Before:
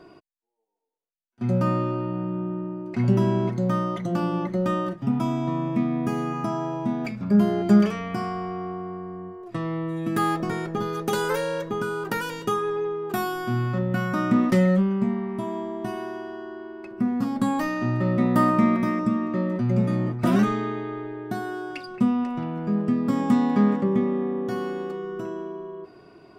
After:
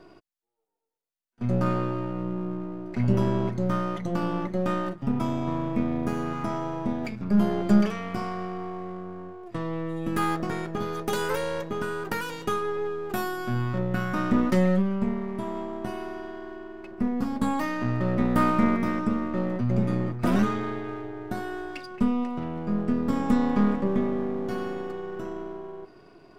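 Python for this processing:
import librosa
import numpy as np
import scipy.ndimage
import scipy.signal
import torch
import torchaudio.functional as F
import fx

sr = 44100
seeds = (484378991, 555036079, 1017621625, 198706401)

y = np.where(x < 0.0, 10.0 ** (-7.0 / 20.0) * x, x)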